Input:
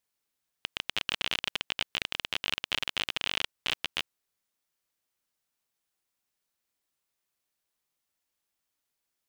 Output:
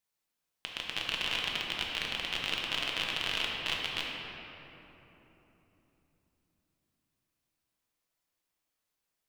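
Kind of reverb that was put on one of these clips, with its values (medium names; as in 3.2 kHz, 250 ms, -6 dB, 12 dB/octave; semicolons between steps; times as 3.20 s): simulated room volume 220 m³, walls hard, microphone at 0.65 m; trim -4 dB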